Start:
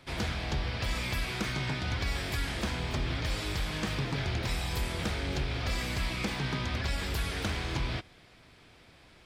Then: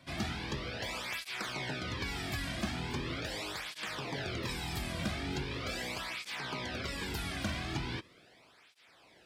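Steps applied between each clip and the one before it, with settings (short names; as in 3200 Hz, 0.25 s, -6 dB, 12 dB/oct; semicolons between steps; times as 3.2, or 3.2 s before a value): tape flanging out of phase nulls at 0.4 Hz, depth 2.4 ms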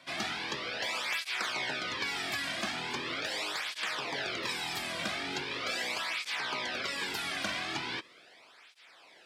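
weighting filter A; gain +4.5 dB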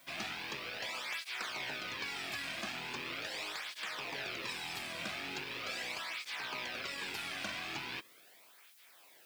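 rattling part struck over -53 dBFS, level -26 dBFS; added noise blue -57 dBFS; gain -6.5 dB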